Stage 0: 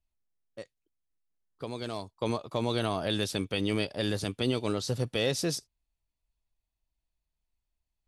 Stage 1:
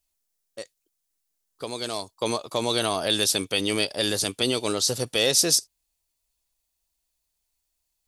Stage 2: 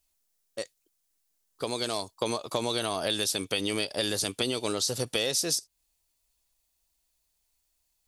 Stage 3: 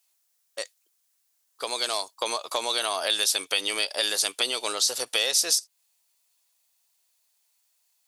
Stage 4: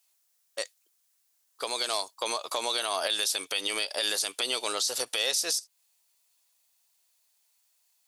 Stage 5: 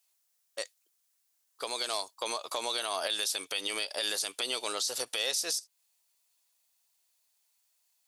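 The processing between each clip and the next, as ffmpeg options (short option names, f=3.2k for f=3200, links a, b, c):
-af "bass=f=250:g=-9,treble=f=4k:g=12,volume=5.5dB"
-af "acompressor=threshold=-28dB:ratio=5,volume=2.5dB"
-af "highpass=730,volume=5.5dB"
-af "alimiter=limit=-16.5dB:level=0:latency=1:release=93"
-af "lowshelf=f=190:g=2.5,volume=-3.5dB"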